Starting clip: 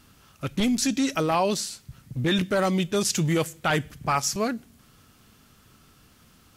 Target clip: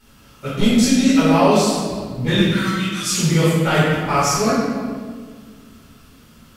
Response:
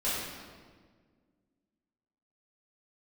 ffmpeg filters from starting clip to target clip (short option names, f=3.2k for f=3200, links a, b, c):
-filter_complex "[0:a]asettb=1/sr,asplit=3[a][b][c];[a]atrim=end=2.484[d];[b]atrim=start=2.48:end=3.09,asetpts=PTS-STARTPTS,afade=t=in:d=0.004:c=qsin,afade=t=out:st=0.606:d=0.004:c=qsin,highpass=f=1.3k:w=0.5412,highpass=f=1.3k:w=1.3066[e];[c]atrim=start=3.086[f];[d][e]acrossfade=d=0.004:c1=hsin:c2=qsin[g];[g][f]acrossfade=d=0.004:c1=qsin:c2=hsin[h];[1:a]atrim=start_sample=2205,asetrate=41013,aresample=44100[i];[h][i]afir=irnorm=-1:irlink=0,volume=-1dB"